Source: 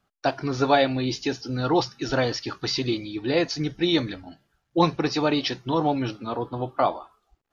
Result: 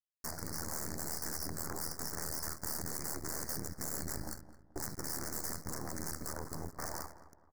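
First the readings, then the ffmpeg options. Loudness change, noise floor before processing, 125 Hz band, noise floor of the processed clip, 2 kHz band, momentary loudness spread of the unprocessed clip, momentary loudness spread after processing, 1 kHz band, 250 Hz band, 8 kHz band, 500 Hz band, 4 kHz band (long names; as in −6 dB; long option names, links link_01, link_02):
−14.5 dB, −76 dBFS, −15.5 dB, −64 dBFS, −15.5 dB, 8 LU, 6 LU, −20.0 dB, −21.0 dB, can't be measured, −22.5 dB, −17.5 dB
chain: -filter_complex "[0:a]aemphasis=mode=reproduction:type=bsi,agate=range=-33dB:threshold=-44dB:ratio=3:detection=peak,highshelf=frequency=2500:width_type=q:width=1.5:gain=13.5,areverse,acompressor=threshold=-28dB:ratio=6,areverse,alimiter=level_in=5dB:limit=-24dB:level=0:latency=1:release=44,volume=-5dB,acrossover=split=1200|6300[link_01][link_02][link_03];[link_01]acompressor=threshold=-50dB:ratio=4[link_04];[link_02]acompressor=threshold=-41dB:ratio=4[link_05];[link_03]acompressor=threshold=-60dB:ratio=4[link_06];[link_04][link_05][link_06]amix=inputs=3:normalize=0,aeval=exprs='val(0)*sin(2*PI*39*n/s)':channel_layout=same,acrusher=bits=7:dc=4:mix=0:aa=0.000001,aeval=exprs='(mod(112*val(0)+1,2)-1)/112':channel_layout=same,asuperstop=centerf=3100:order=8:qfactor=0.99,asplit=2[link_07][link_08];[link_08]adelay=216,lowpass=frequency=1700:poles=1,volume=-13dB,asplit=2[link_09][link_10];[link_10]adelay=216,lowpass=frequency=1700:poles=1,volume=0.37,asplit=2[link_11][link_12];[link_12]adelay=216,lowpass=frequency=1700:poles=1,volume=0.37,asplit=2[link_13][link_14];[link_14]adelay=216,lowpass=frequency=1700:poles=1,volume=0.37[link_15];[link_09][link_11][link_13][link_15]amix=inputs=4:normalize=0[link_16];[link_07][link_16]amix=inputs=2:normalize=0,volume=13.5dB"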